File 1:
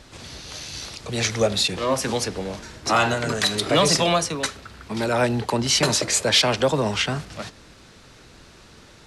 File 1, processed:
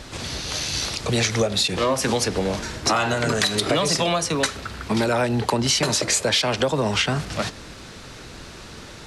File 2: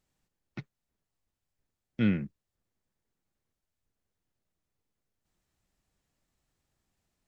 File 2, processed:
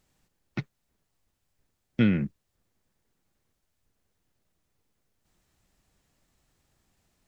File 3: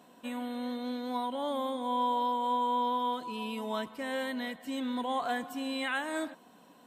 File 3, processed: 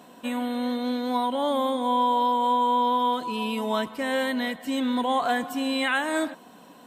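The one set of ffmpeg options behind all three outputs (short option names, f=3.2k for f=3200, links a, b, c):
-af "acompressor=threshold=-26dB:ratio=10,volume=8.5dB"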